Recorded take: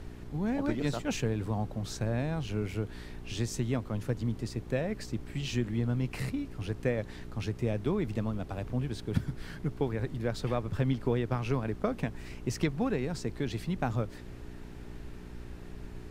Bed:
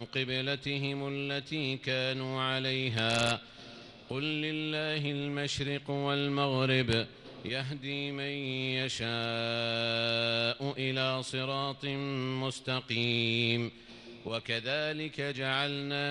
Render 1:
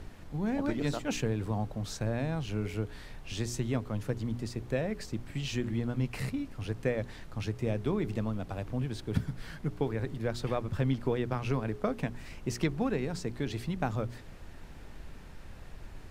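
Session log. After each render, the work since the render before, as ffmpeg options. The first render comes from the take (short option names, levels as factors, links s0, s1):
-af "bandreject=f=60:t=h:w=4,bandreject=f=120:t=h:w=4,bandreject=f=180:t=h:w=4,bandreject=f=240:t=h:w=4,bandreject=f=300:t=h:w=4,bandreject=f=360:t=h:w=4,bandreject=f=420:t=h:w=4"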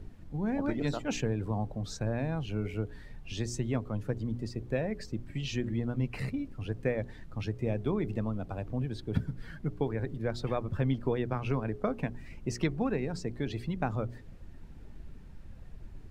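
-af "afftdn=nr=11:nf=-47"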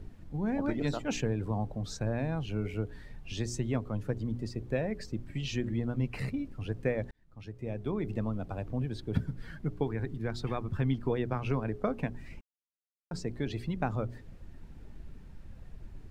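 -filter_complex "[0:a]asettb=1/sr,asplit=3[s0][s1][s2];[s0]atrim=end=9.834[s3];[s1]atrim=start=9.83:end=11.1,asetpts=PTS-STARTPTS,afade=t=in:d=0.004:c=qsin,afade=t=out:st=1.266:d=0.004:c=qsin,equalizer=f=560:t=o:w=0.43:g=-8.5[s4];[s2]atrim=start=11.096[s5];[s3][s4]acrossfade=d=0.004:c1=hsin:c2=qsin[s6];[s6][s5]acrossfade=d=0.004:c1=qsin:c2=hsin,asplit=4[s7][s8][s9][s10];[s7]atrim=end=7.11,asetpts=PTS-STARTPTS,afade=t=out:st=7.106:d=0.004:c=hsin[s11];[s8]atrim=start=7.11:end=12.41,asetpts=PTS-STARTPTS,afade=t=in:d=1.12,afade=t=out:st=5.296:d=0.004:c=hsin[s12];[s9]atrim=start=12.41:end=13.11,asetpts=PTS-STARTPTS,volume=0[s13];[s10]atrim=start=13.11,asetpts=PTS-STARTPTS,afade=t=in:d=0.004:c=hsin[s14];[s11][s12][s13][s14]concat=n=4:v=0:a=1"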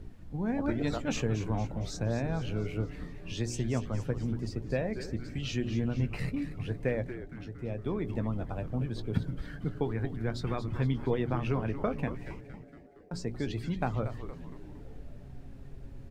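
-filter_complex "[0:a]asplit=2[s0][s1];[s1]adelay=17,volume=0.251[s2];[s0][s2]amix=inputs=2:normalize=0,asplit=2[s3][s4];[s4]asplit=6[s5][s6][s7][s8][s9][s10];[s5]adelay=232,afreqshift=-140,volume=0.316[s11];[s6]adelay=464,afreqshift=-280,volume=0.174[s12];[s7]adelay=696,afreqshift=-420,volume=0.0955[s13];[s8]adelay=928,afreqshift=-560,volume=0.0525[s14];[s9]adelay=1160,afreqshift=-700,volume=0.0288[s15];[s10]adelay=1392,afreqshift=-840,volume=0.0158[s16];[s11][s12][s13][s14][s15][s16]amix=inputs=6:normalize=0[s17];[s3][s17]amix=inputs=2:normalize=0"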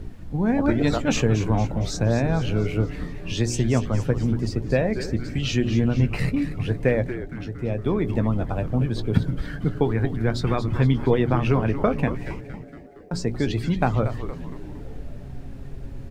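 -af "volume=3.16"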